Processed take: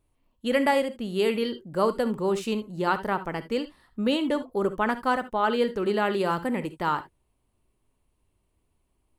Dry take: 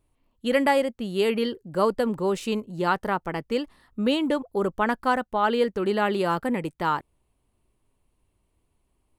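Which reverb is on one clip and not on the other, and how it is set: non-linear reverb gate 90 ms rising, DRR 12 dB; gain -1.5 dB

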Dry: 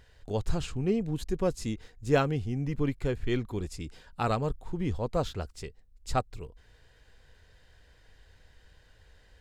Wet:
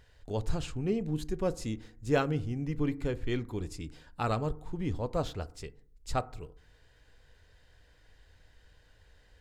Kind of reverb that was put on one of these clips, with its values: FDN reverb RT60 0.56 s, low-frequency decay 1.2×, high-frequency decay 0.35×, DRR 14.5 dB; gain -2.5 dB

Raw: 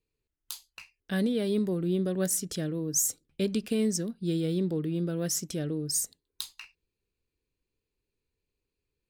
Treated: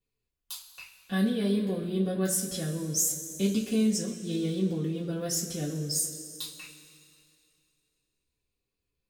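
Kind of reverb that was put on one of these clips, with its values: two-slope reverb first 0.22 s, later 2.5 s, from -18 dB, DRR -7.5 dB; gain -7.5 dB

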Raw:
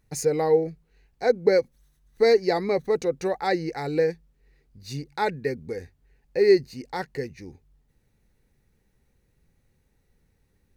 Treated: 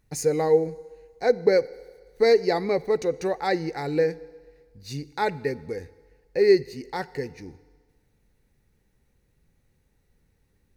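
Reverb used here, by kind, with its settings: FDN reverb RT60 1.6 s, low-frequency decay 0.75×, high-frequency decay 1×, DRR 18 dB

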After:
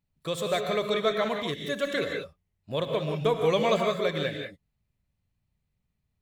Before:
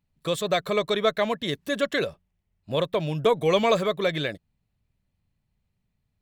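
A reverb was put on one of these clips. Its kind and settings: non-linear reverb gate 0.21 s rising, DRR 3 dB; gain -4.5 dB

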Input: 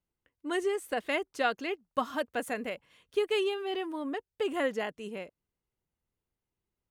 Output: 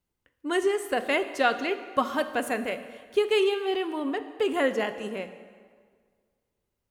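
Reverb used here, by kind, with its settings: plate-style reverb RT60 1.8 s, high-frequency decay 0.75×, DRR 9.5 dB; gain +5 dB

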